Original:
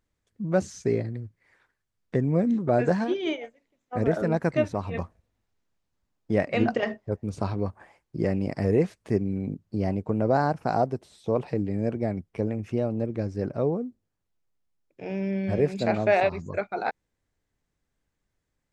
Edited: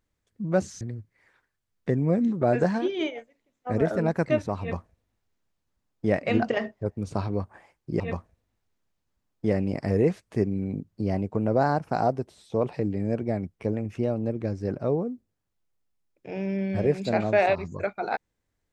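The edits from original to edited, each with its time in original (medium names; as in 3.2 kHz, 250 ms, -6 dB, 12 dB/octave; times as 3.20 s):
0.81–1.07 s: delete
4.86–6.38 s: copy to 8.26 s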